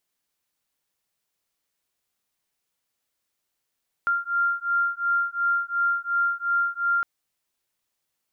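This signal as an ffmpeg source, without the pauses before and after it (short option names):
-f lavfi -i "aevalsrc='0.0596*(sin(2*PI*1390*t)+sin(2*PI*1392.8*t))':d=2.96:s=44100"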